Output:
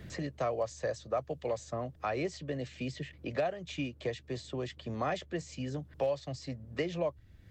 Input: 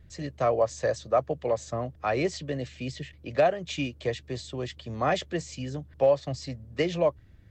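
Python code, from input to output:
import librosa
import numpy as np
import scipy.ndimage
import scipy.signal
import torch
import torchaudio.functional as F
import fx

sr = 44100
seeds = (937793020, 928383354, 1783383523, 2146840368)

y = fx.band_squash(x, sr, depth_pct=70)
y = F.gain(torch.from_numpy(y), -7.5).numpy()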